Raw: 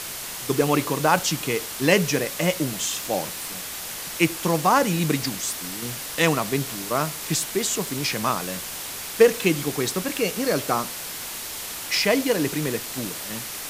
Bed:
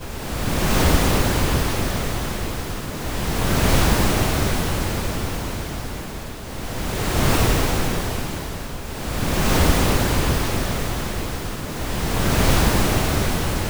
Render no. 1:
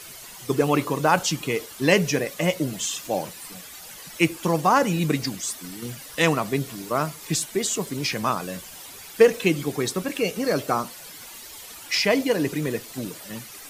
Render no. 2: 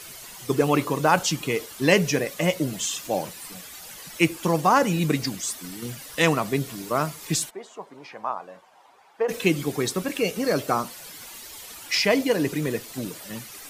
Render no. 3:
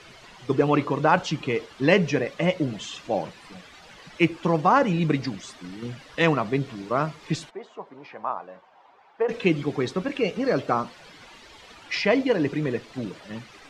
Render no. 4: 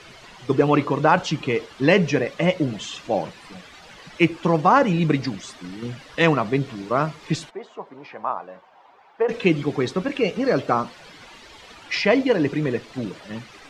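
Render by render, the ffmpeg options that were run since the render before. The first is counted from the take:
ffmpeg -i in.wav -af "afftdn=noise_reduction=12:noise_floor=-34" out.wav
ffmpeg -i in.wav -filter_complex "[0:a]asplit=3[link_01][link_02][link_03];[link_01]afade=type=out:start_time=7.49:duration=0.02[link_04];[link_02]bandpass=frequency=840:width_type=q:width=2.4,afade=type=in:start_time=7.49:duration=0.02,afade=type=out:start_time=9.28:duration=0.02[link_05];[link_03]afade=type=in:start_time=9.28:duration=0.02[link_06];[link_04][link_05][link_06]amix=inputs=3:normalize=0" out.wav
ffmpeg -i in.wav -af "lowpass=4400,aemphasis=mode=reproduction:type=cd" out.wav
ffmpeg -i in.wav -af "volume=3dB,alimiter=limit=-3dB:level=0:latency=1" out.wav

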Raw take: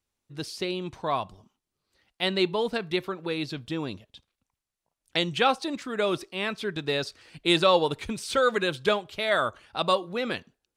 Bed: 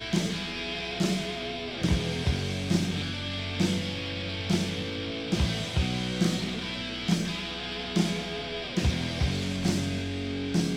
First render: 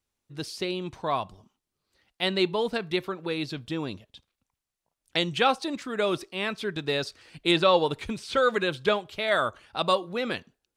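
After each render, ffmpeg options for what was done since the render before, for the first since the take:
ffmpeg -i in.wav -filter_complex "[0:a]asettb=1/sr,asplit=3[link_01][link_02][link_03];[link_01]atrim=end=7.514[link_04];[link_02]atrim=start=7.51:end=9.28,asetpts=PTS-STARTPTS,afade=type=in:duration=0.004:curve=qsin,afade=type=out:start_time=1.766:duration=0.004:curve=qsin,acrossover=split=4900[link_05][link_06];[link_06]acompressor=threshold=-48dB:ratio=4:attack=1:release=60[link_07];[link_05][link_07]amix=inputs=2:normalize=0[link_08];[link_03]atrim=start=9.276[link_09];[link_04][link_08]acrossfade=duration=0.004:curve1=hsin:curve2=qsin[link_10];[link_10][link_09]acrossfade=duration=0.004:curve1=qsin:curve2=hsin" out.wav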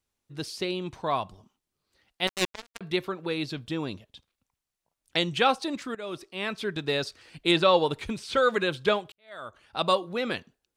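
ffmpeg -i in.wav -filter_complex "[0:a]asettb=1/sr,asplit=3[link_01][link_02][link_03];[link_01]atrim=end=2.274[link_04];[link_02]atrim=start=2.27:end=2.81,asetpts=PTS-STARTPTS,afade=type=in:duration=0.004:curve=qsin,afade=type=out:start_time=0.536:duration=0.004:curve=qsin,acrusher=bits=2:mix=0:aa=0.5[link_05];[link_03]atrim=start=2.806[link_06];[link_04][link_05]acrossfade=duration=0.004:curve1=hsin:curve2=qsin[link_07];[link_07][link_06]acrossfade=duration=0.004:curve1=qsin:curve2=hsin,asplit=3[link_08][link_09][link_10];[link_08]atrim=end=5.95,asetpts=PTS-STARTPTS,afade=type=out:start_time=5.946:duration=0.004:curve=hsin:silence=0.149624[link_11];[link_09]atrim=start=5.95:end=9.12,asetpts=PTS-STARTPTS,afade=type=in:duration=0.64:silence=0.149624,afade=type=out:start_time=3.166:duration=0.004:curve=hsin[link_12];[link_10]atrim=start=9.12,asetpts=PTS-STARTPTS,afade=type=in:duration=0.68:curve=qua[link_13];[link_11][link_12][link_13]concat=n=3:v=0:a=1" out.wav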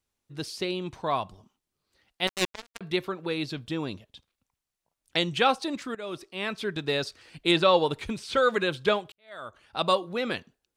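ffmpeg -i in.wav -af anull out.wav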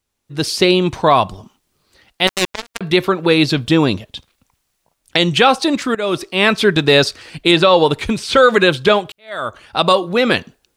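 ffmpeg -i in.wav -af "dynaudnorm=framelen=250:gausssize=3:maxgain=12dB,alimiter=level_in=6.5dB:limit=-1dB:release=50:level=0:latency=1" out.wav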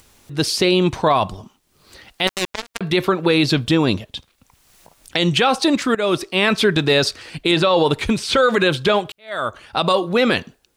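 ffmpeg -i in.wav -af "acompressor=mode=upward:threshold=-34dB:ratio=2.5,alimiter=limit=-6.5dB:level=0:latency=1:release=31" out.wav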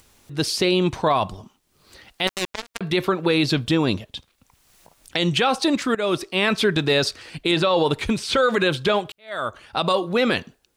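ffmpeg -i in.wav -af "volume=-3.5dB" out.wav

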